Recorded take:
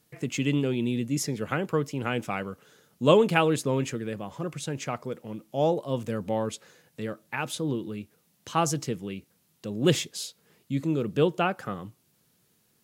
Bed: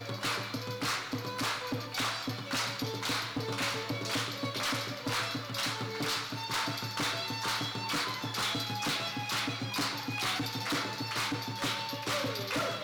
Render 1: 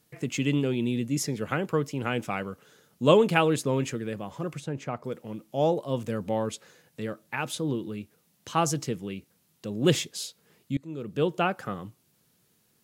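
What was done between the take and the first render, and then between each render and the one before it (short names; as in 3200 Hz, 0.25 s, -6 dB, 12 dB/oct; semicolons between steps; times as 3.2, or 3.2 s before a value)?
4.6–5.04 high shelf 2300 Hz -12 dB; 10.77–11.43 fade in linear, from -23 dB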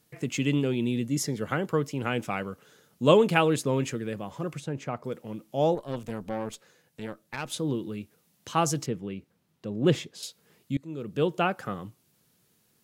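1.07–1.78 notch 2500 Hz, Q 7.3; 5.75–7.52 tube stage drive 25 dB, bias 0.8; 8.86–10.23 bell 13000 Hz -13.5 dB 2.4 oct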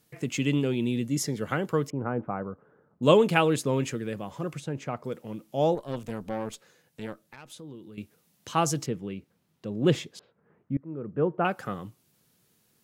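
1.9–3.03 LPF 1300 Hz 24 dB/oct; 7.21–7.98 compressor 2:1, threshold -52 dBFS; 10.19–11.45 LPF 1600 Hz 24 dB/oct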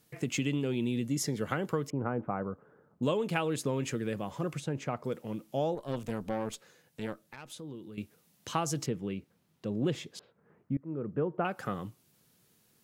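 compressor 6:1, threshold -27 dBFS, peak gain reduction 13 dB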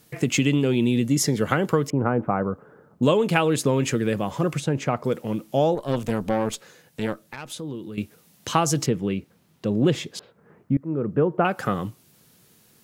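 gain +10.5 dB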